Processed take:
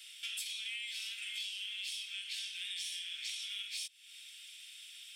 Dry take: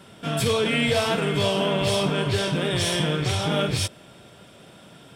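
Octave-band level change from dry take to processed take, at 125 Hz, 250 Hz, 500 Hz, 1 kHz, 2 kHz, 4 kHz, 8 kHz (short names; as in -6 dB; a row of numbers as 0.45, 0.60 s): under -40 dB, under -40 dB, under -40 dB, under -40 dB, -15.0 dB, -10.5 dB, -11.5 dB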